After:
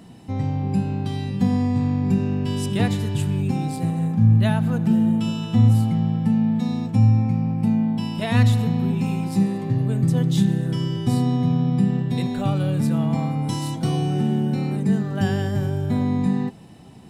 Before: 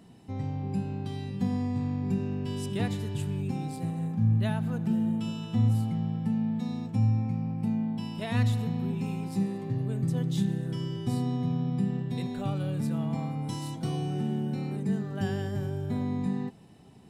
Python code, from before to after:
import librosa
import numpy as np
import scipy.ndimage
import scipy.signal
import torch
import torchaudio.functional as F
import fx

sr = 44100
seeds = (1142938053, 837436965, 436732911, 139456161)

y = fx.notch(x, sr, hz=410.0, q=12.0)
y = y * librosa.db_to_amplitude(9.0)